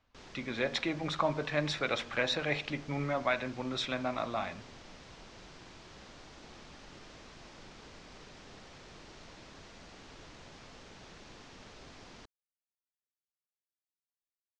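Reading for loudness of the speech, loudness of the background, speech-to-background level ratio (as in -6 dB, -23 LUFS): -33.5 LUFS, -52.0 LUFS, 18.5 dB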